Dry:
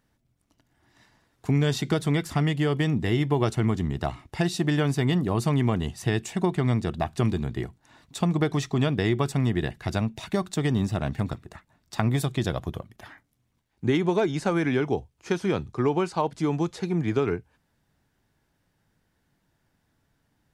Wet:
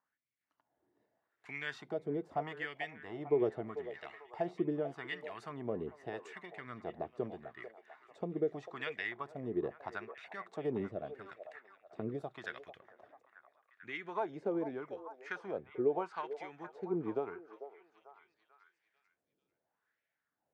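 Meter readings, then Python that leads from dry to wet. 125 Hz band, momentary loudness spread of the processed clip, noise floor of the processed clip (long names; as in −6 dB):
−25.0 dB, 15 LU, below −85 dBFS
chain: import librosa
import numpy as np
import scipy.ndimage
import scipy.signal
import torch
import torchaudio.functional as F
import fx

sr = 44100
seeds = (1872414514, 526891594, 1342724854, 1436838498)

y = fx.wah_lfo(x, sr, hz=0.81, low_hz=420.0, high_hz=2200.0, q=3.4)
y = fx.rotary(y, sr, hz=1.1)
y = fx.echo_stepped(y, sr, ms=444, hz=620.0, octaves=0.7, feedback_pct=70, wet_db=-8.5)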